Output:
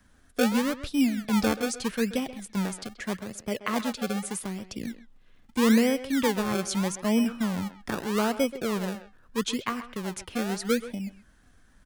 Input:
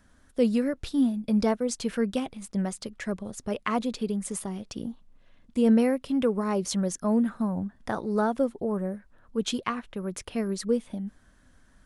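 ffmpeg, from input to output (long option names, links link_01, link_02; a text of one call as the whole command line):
ffmpeg -i in.wav -filter_complex "[0:a]acrossover=split=140|810|4000[link_01][link_02][link_03][link_04];[link_02]acrusher=samples=31:mix=1:aa=0.000001:lfo=1:lforange=31:lforate=0.8[link_05];[link_01][link_05][link_03][link_04]amix=inputs=4:normalize=0,asettb=1/sr,asplit=3[link_06][link_07][link_08];[link_06]atrim=end=3.014[link_09];[link_07]atrim=start=3.01:end=4.43,asetpts=PTS-STARTPTS,afade=type=in:duration=0.004:curve=qsin,afade=type=out:start_time=1.416:duration=0.004:curve=qsin,highpass=frequency=58:poles=1[link_10];[link_08]atrim=start=4.426[link_11];[link_09][link_10]acrossfade=duration=0.004:curve1=hsin:curve2=qsin[link_12];[link_12][link_11]acrossfade=duration=0.004:curve1=qsin:curve2=hsin,asplit=2[link_13][link_14];[link_14]adelay=130,highpass=300,lowpass=3400,asoftclip=type=hard:threshold=-20dB,volume=-12dB[link_15];[link_13][link_15]amix=inputs=2:normalize=0" out.wav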